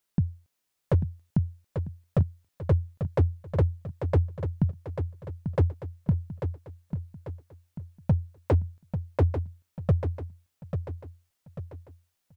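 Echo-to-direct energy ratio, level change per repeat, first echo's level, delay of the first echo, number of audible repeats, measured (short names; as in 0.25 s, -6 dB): -7.0 dB, -7.0 dB, -8.0 dB, 0.842 s, 4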